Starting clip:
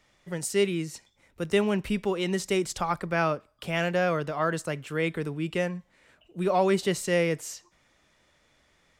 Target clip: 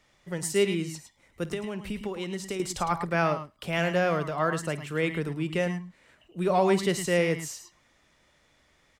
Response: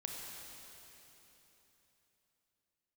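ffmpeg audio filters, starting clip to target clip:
-filter_complex "[0:a]asettb=1/sr,asplit=3[a][b][c];[a]atrim=end=1.494[d];[b]atrim=start=1.49:end=2.6,asetpts=PTS-STARTPTS,afade=t=in:d=0.004:c=qsin,afade=t=out:st=1.106:d=0.004:c=qsin,acompressor=threshold=-30dB:ratio=10[e];[c]atrim=start=2.596[f];[d][e]acrossfade=d=0.004:c1=hsin:c2=qsin[g];[g][f]acrossfade=d=0.004:c1=qsin:c2=hsin,aecho=1:1:52|107|108:0.119|0.237|0.251"

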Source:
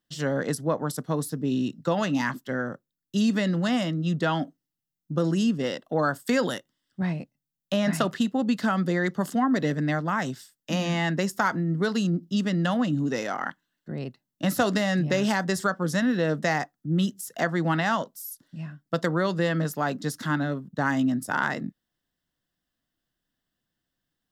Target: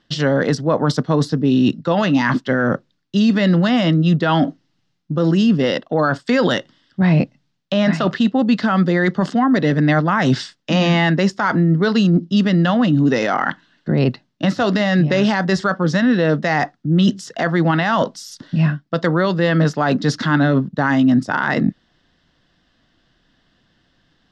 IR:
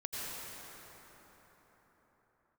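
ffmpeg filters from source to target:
-af "areverse,acompressor=threshold=-34dB:ratio=16,areverse,lowpass=f=5.1k:w=0.5412,lowpass=f=5.1k:w=1.3066,alimiter=level_in=29dB:limit=-1dB:release=50:level=0:latency=1,volume=-6dB"

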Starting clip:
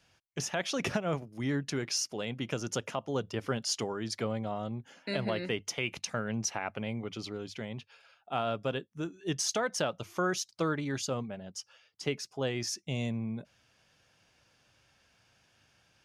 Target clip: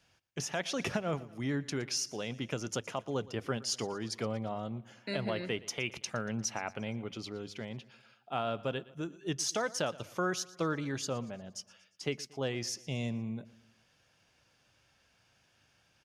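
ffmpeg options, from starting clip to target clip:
-af "aecho=1:1:117|234|351|468:0.1|0.05|0.025|0.0125,volume=-2dB"

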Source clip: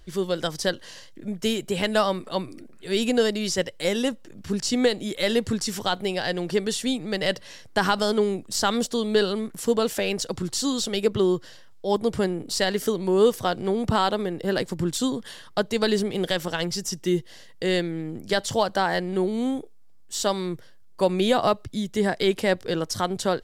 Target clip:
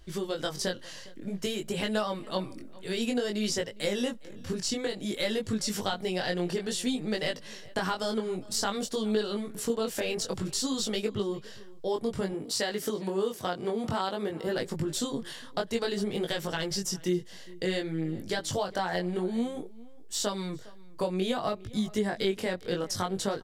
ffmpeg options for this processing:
-filter_complex "[0:a]asettb=1/sr,asplit=3[a][b][c];[a]atrim=end=12.324[d];[b]atrim=start=12.32:end=14.47,asetpts=PTS-STARTPTS,afade=t=in:d=0.004:c=qsin,afade=t=out:st=2.146:d=0.004:c=qsin,highpass=f=170:p=1[e];[c]atrim=start=14.466[f];[d][e]acrossfade=d=0.004:c1=hsin:c2=qsin[g];[g][f]acrossfade=d=0.004:c1=qsin:c2=hsin,acompressor=threshold=-25dB:ratio=6,flanger=delay=18.5:depth=4.2:speed=0.55,asplit=2[h][i];[i]adelay=408.2,volume=-21dB,highshelf=f=4k:g=-9.18[j];[h][j]amix=inputs=2:normalize=0,volume=1.5dB"

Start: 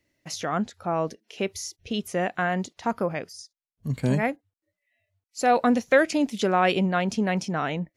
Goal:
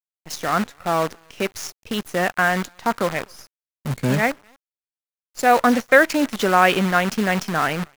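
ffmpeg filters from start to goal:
-filter_complex "[0:a]asplit=2[a][b];[b]adelay=250,highpass=300,lowpass=3.4k,asoftclip=type=hard:threshold=-17dB,volume=-28dB[c];[a][c]amix=inputs=2:normalize=0,acrusher=bits=6:dc=4:mix=0:aa=0.000001,adynamicequalizer=threshold=0.0141:dfrequency=1500:dqfactor=0.81:tfrequency=1500:tqfactor=0.81:attack=5:release=100:ratio=0.375:range=3.5:mode=boostabove:tftype=bell,volume=2.5dB"

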